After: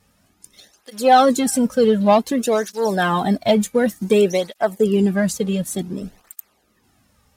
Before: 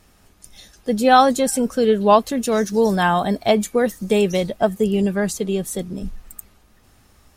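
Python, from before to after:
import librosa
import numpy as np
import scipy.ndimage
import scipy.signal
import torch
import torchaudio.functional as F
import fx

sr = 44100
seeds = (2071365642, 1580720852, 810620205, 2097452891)

y = fx.leveller(x, sr, passes=1)
y = fx.flanger_cancel(y, sr, hz=0.55, depth_ms=3.1)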